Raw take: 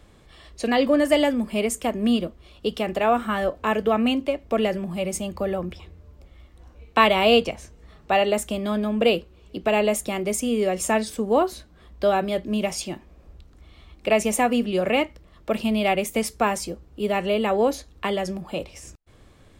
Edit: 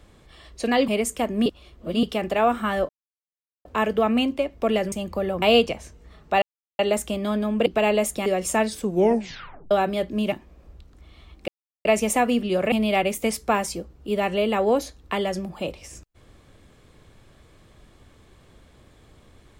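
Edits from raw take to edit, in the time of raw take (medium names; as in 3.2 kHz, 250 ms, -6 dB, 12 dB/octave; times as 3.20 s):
0.88–1.53 s: delete
2.11–2.68 s: reverse
3.54 s: insert silence 0.76 s
4.81–5.16 s: delete
5.66–7.20 s: delete
8.20 s: insert silence 0.37 s
9.07–9.56 s: delete
10.16–10.61 s: delete
11.17 s: tape stop 0.89 s
12.67–12.92 s: delete
14.08 s: insert silence 0.37 s
14.95–15.64 s: delete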